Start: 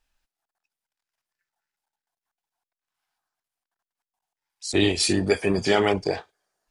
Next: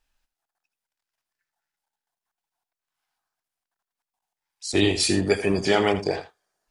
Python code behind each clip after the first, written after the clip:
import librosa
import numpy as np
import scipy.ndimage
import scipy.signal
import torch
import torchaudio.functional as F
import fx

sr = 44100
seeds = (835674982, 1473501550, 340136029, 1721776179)

y = x + 10.0 ** (-12.5 / 20.0) * np.pad(x, (int(81 * sr / 1000.0), 0))[:len(x)]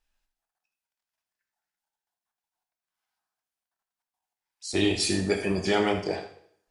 y = fx.rev_plate(x, sr, seeds[0], rt60_s=0.63, hf_ratio=1.0, predelay_ms=0, drr_db=5.0)
y = y * 10.0 ** (-5.0 / 20.0)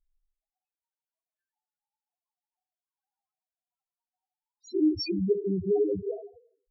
y = fx.wiener(x, sr, points=15)
y = fx.spec_topn(y, sr, count=2)
y = y * 10.0 ** (4.5 / 20.0)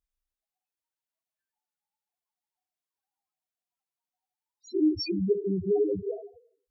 y = scipy.signal.sosfilt(scipy.signal.butter(2, 47.0, 'highpass', fs=sr, output='sos'), x)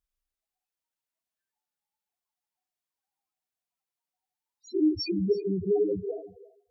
y = x + 10.0 ** (-19.5 / 20.0) * np.pad(x, (int(332 * sr / 1000.0), 0))[:len(x)]